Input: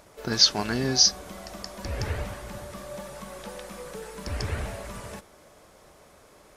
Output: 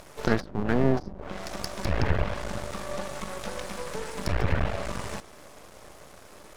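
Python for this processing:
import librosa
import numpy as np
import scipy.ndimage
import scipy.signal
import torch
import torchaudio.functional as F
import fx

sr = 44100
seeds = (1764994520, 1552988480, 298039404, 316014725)

y = fx.env_lowpass_down(x, sr, base_hz=320.0, full_db=-19.5)
y = np.maximum(y, 0.0)
y = F.gain(torch.from_numpy(y), 9.0).numpy()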